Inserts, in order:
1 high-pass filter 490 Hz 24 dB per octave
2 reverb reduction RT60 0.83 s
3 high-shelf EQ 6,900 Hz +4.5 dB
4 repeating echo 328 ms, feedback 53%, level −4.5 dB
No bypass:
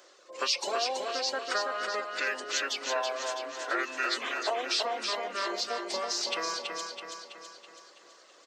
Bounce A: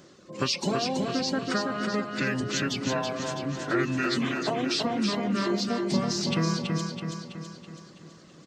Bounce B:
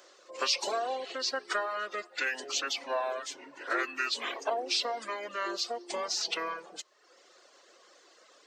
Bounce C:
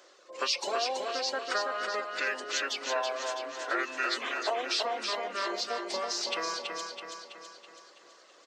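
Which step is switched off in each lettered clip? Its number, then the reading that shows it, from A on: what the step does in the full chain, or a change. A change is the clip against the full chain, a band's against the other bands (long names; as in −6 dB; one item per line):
1, 250 Hz band +19.0 dB
4, echo-to-direct ratio −3.0 dB to none audible
3, 8 kHz band −2.0 dB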